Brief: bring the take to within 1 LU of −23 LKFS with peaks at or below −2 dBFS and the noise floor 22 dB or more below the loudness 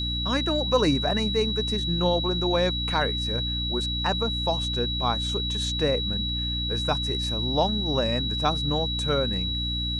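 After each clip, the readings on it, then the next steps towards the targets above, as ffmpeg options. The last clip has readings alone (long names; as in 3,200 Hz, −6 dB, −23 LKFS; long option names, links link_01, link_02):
mains hum 60 Hz; hum harmonics up to 300 Hz; level of the hum −28 dBFS; interfering tone 3,900 Hz; level of the tone −28 dBFS; integrated loudness −25.0 LKFS; sample peak −9.5 dBFS; target loudness −23.0 LKFS
→ -af "bandreject=frequency=60:width_type=h:width=4,bandreject=frequency=120:width_type=h:width=4,bandreject=frequency=180:width_type=h:width=4,bandreject=frequency=240:width_type=h:width=4,bandreject=frequency=300:width_type=h:width=4"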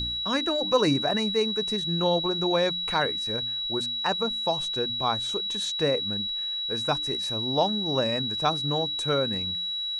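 mains hum none found; interfering tone 3,900 Hz; level of the tone −28 dBFS
→ -af "bandreject=frequency=3900:width=30"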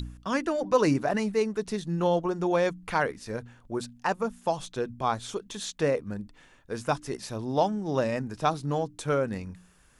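interfering tone none found; integrated loudness −29.0 LKFS; sample peak −10.5 dBFS; target loudness −23.0 LKFS
→ -af "volume=6dB"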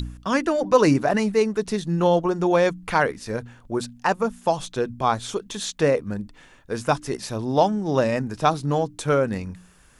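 integrated loudness −23.0 LKFS; sample peak −4.5 dBFS; background noise floor −53 dBFS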